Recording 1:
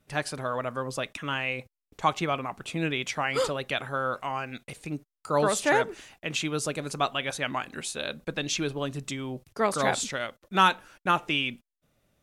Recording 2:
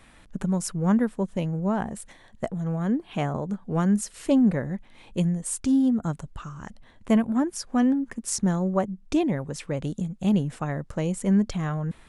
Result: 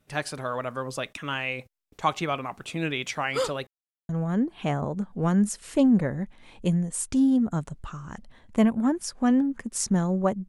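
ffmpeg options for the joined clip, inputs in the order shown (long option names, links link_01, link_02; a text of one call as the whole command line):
ffmpeg -i cue0.wav -i cue1.wav -filter_complex "[0:a]apad=whole_dur=10.48,atrim=end=10.48,asplit=2[link_01][link_02];[link_01]atrim=end=3.67,asetpts=PTS-STARTPTS,afade=type=out:start_time=3.666:duration=0.004:curve=hsin[link_03];[link_02]atrim=start=3.67:end=4.09,asetpts=PTS-STARTPTS,volume=0[link_04];[1:a]atrim=start=2.61:end=9,asetpts=PTS-STARTPTS,afade=type=in:duration=0.004:curve=hsin[link_05];[link_03][link_04][link_05]concat=n=3:v=0:a=1" out.wav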